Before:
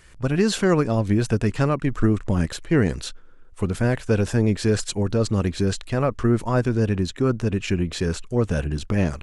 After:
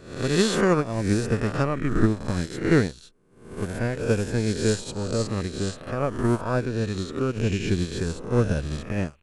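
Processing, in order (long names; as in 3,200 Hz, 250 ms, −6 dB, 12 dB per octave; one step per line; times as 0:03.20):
peak hold with a rise ahead of every peak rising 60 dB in 1.48 s
0:07.36–0:08.81: low-shelf EQ 190 Hz +4 dB
expander for the loud parts 2.5 to 1, over −33 dBFS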